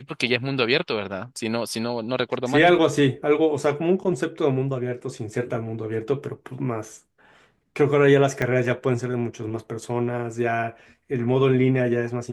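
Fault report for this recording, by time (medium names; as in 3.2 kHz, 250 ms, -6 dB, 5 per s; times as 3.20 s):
8.42 s: dropout 2.3 ms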